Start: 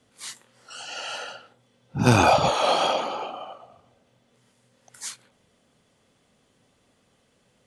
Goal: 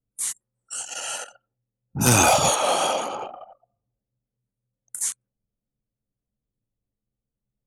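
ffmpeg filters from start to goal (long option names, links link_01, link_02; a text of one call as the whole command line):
ffmpeg -i in.wav -filter_complex "[0:a]asettb=1/sr,asplit=3[link_01][link_02][link_03];[link_01]atrim=end=3.134[link_04];[link_02]atrim=start=3.13:end=3.53,asetpts=PTS-STARTPTS,afade=type=in:duration=0.004:curve=qsin,afade=type=out:start_time=0.396:duration=0.004:curve=qsin,equalizer=frequency=93:width=0.95:gain=9[link_05];[link_03]atrim=start=3.526[link_06];[link_04][link_05]acrossfade=duration=0.004:curve1=hsin:curve2=qsin[link_07];[link_07][link_06]acrossfade=duration=0.004:curve1=qsin:curve2=hsin,asplit=2[link_08][link_09];[link_09]asoftclip=type=hard:threshold=-13dB,volume=-7dB[link_10];[link_08][link_10]amix=inputs=2:normalize=0,acontrast=37,asplit=3[link_11][link_12][link_13];[link_11]afade=type=out:start_time=2:duration=0.02[link_14];[link_12]aemphasis=mode=production:type=75kf,afade=type=in:start_time=2:duration=0.02,afade=type=out:start_time=2.54:duration=0.02[link_15];[link_13]afade=type=in:start_time=2.54:duration=0.02[link_16];[link_14][link_15][link_16]amix=inputs=3:normalize=0,acrossover=split=600|5400[link_17][link_18][link_19];[link_19]acompressor=threshold=-37dB:ratio=6[link_20];[link_17][link_18][link_20]amix=inputs=3:normalize=0,aexciter=amount=13.2:drive=2.2:freq=6600,anlmdn=1000,volume=-8.5dB" out.wav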